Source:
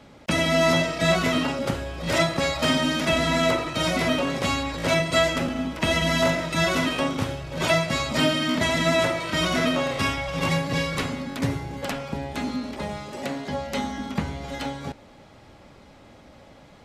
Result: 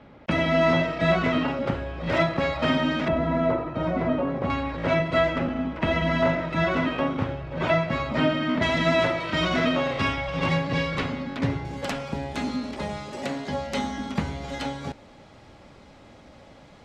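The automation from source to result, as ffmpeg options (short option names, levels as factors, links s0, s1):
-af "asetnsamples=n=441:p=0,asendcmd='3.08 lowpass f 1100;4.5 lowpass f 2100;8.62 lowpass f 3700;11.65 lowpass f 8800',lowpass=2500"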